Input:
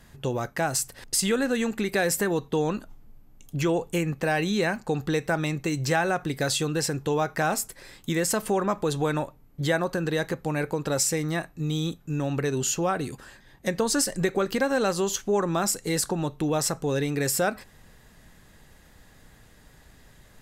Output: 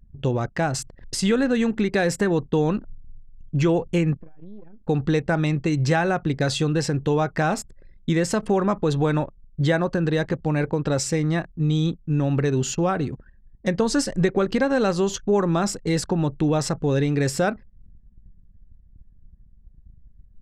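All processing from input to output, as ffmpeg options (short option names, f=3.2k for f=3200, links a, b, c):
-filter_complex "[0:a]asettb=1/sr,asplit=3[a][b][c];[a]atrim=end=4.174[d];[b]atrim=start=4.17:end=4.88,asetpts=PTS-STARTPTS,afade=t=in:d=0.004:c=qsin,afade=t=out:st=0.706:d=0.004:c=qsin,lowshelf=f=73:g=-3,acompressor=threshold=-39dB:ratio=8:attack=3.2:release=140:knee=1:detection=peak,aeval=exprs='max(val(0),0)':c=same[e];[c]atrim=start=4.876[f];[d][e]acrossfade=d=0.004:c1=hsin:c2=qsin[g];[g][f]acrossfade=d=0.004:c1=qsin:c2=hsin,lowpass=6.1k,lowshelf=f=300:g=8,anlmdn=1.58,volume=1dB"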